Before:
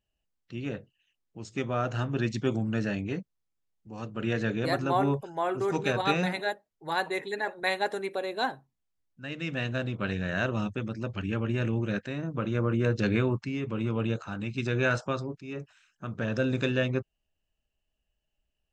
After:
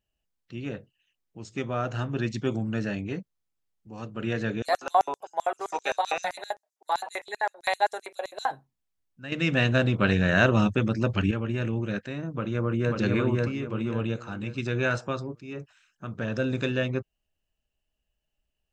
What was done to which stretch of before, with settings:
4.62–8.51 LFO high-pass square 7.7 Hz 710–6300 Hz
9.32–11.31 gain +8.5 dB
12.32–12.94 echo throw 0.54 s, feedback 35%, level -1 dB

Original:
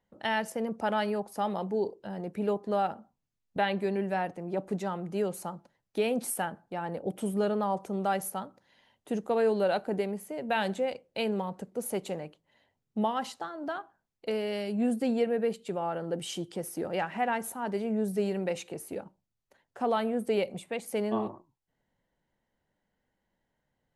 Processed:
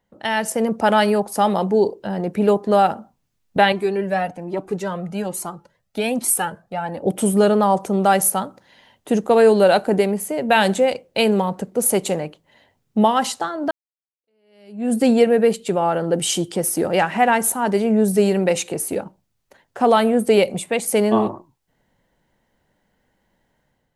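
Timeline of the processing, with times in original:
3.72–7.02 cascading flanger rising 1.2 Hz
13.71–14.96 fade in exponential
whole clip: dynamic EQ 8800 Hz, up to +8 dB, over -57 dBFS, Q 0.85; AGC gain up to 7 dB; gain +6 dB

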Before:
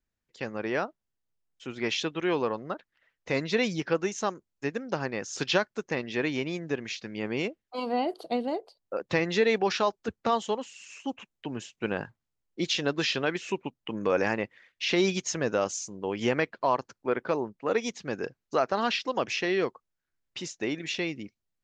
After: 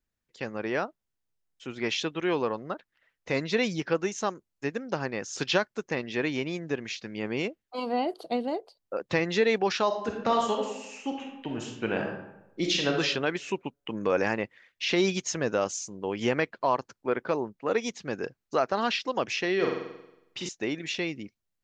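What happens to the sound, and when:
9.86–12.91 reverb throw, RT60 0.89 s, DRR 1 dB
19.55–20.49 flutter echo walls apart 7.8 m, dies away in 0.87 s

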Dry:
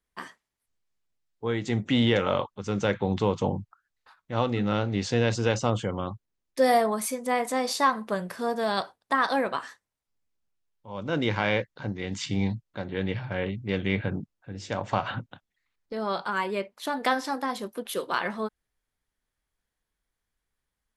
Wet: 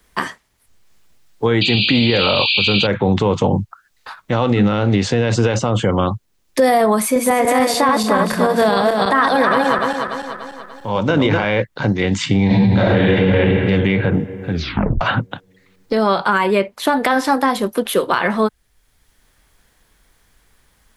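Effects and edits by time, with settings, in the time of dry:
1.61–2.87 painted sound noise 2300–4800 Hz -24 dBFS
7.01–11.44 regenerating reverse delay 0.146 s, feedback 59%, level -3 dB
12.46–13.16 reverb throw, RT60 2.4 s, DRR -11 dB
14.51 tape stop 0.50 s
whole clip: dynamic EQ 5600 Hz, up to -6 dB, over -49 dBFS, Q 1.1; maximiser +19 dB; three-band squash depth 40%; gain -4.5 dB

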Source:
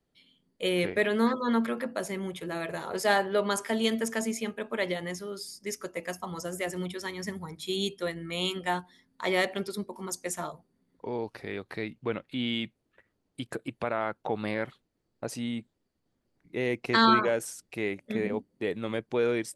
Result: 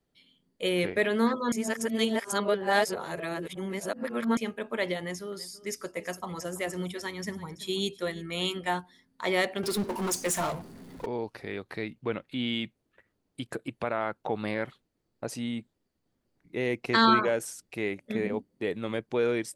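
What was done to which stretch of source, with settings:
1.52–4.37 reverse
4.99–8.72 echo 0.333 s -18 dB
9.63–11.06 power-law curve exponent 0.5

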